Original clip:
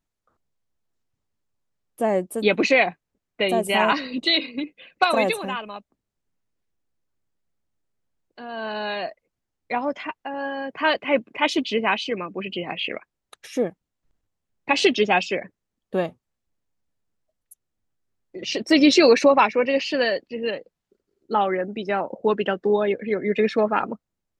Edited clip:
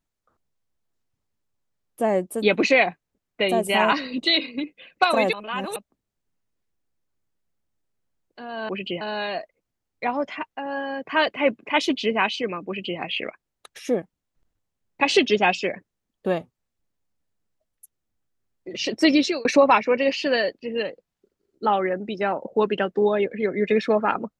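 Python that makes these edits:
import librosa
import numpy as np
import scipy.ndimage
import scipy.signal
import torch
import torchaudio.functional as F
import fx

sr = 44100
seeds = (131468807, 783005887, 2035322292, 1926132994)

y = fx.edit(x, sr, fx.reverse_span(start_s=5.33, length_s=0.43),
    fx.duplicate(start_s=12.35, length_s=0.32, to_s=8.69),
    fx.fade_out_span(start_s=18.72, length_s=0.41), tone=tone)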